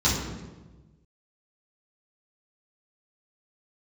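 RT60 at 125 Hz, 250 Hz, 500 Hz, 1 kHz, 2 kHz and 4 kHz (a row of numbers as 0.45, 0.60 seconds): 1.7, 1.5, 1.3, 1.1, 0.95, 0.80 seconds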